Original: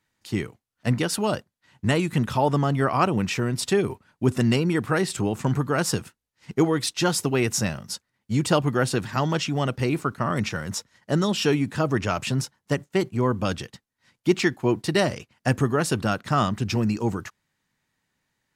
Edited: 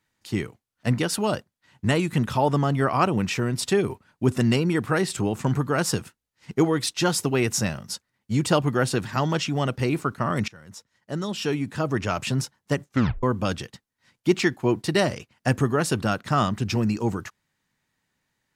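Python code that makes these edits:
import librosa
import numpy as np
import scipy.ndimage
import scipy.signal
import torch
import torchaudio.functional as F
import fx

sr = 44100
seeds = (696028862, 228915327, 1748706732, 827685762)

y = fx.edit(x, sr, fx.fade_in_from(start_s=10.48, length_s=1.8, floor_db=-20.5),
    fx.tape_stop(start_s=12.87, length_s=0.36), tone=tone)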